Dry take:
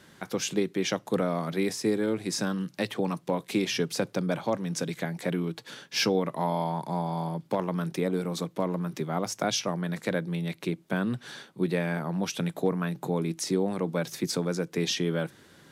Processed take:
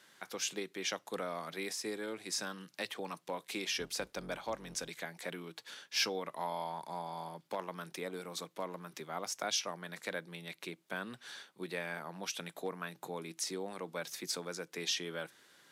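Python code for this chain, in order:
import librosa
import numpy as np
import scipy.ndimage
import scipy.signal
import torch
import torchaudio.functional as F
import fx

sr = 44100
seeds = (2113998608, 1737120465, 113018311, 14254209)

y = fx.octave_divider(x, sr, octaves=2, level_db=2.0, at=(3.69, 4.89))
y = fx.highpass(y, sr, hz=1100.0, slope=6)
y = F.gain(torch.from_numpy(y), -4.0).numpy()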